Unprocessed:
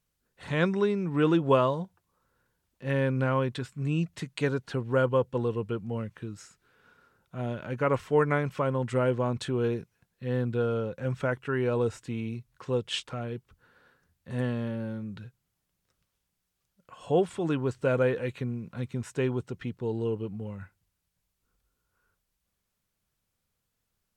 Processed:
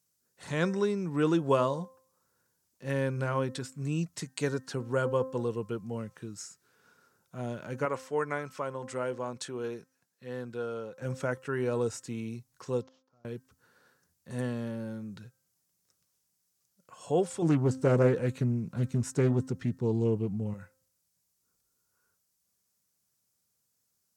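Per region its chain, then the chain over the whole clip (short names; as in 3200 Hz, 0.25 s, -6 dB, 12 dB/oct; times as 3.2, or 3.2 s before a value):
7.85–11.02 LPF 1300 Hz 6 dB/oct + tilt +3.5 dB/oct
12.82–13.25 CVSD 32 kbps + resonant high shelf 1600 Hz -7 dB, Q 1.5 + flipped gate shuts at -38 dBFS, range -30 dB
17.42–20.54 low shelf 310 Hz +11 dB + Doppler distortion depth 0.27 ms
whole clip: HPF 110 Hz; resonant high shelf 4300 Hz +8.5 dB, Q 1.5; de-hum 261.5 Hz, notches 7; gain -2.5 dB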